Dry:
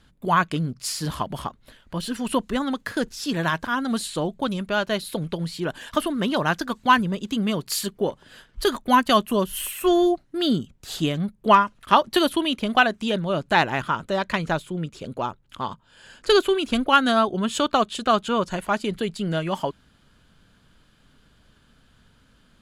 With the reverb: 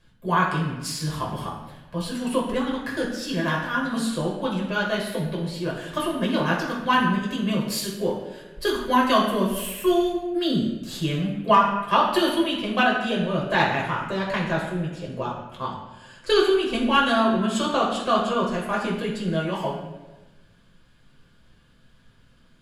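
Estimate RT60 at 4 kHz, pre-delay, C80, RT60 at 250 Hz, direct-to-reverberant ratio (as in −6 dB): 0.85 s, 7 ms, 6.0 dB, 1.3 s, −4.0 dB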